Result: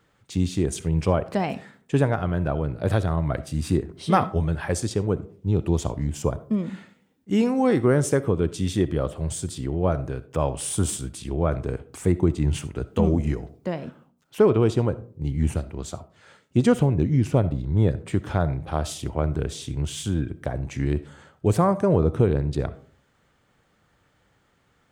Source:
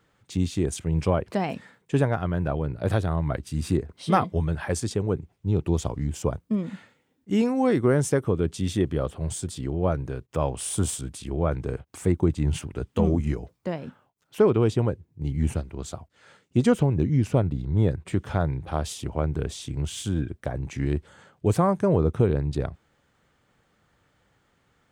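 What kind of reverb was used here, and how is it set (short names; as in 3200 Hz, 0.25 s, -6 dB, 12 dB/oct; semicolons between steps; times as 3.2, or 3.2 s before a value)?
digital reverb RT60 0.47 s, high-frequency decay 0.35×, pre-delay 20 ms, DRR 15.5 dB; gain +1.5 dB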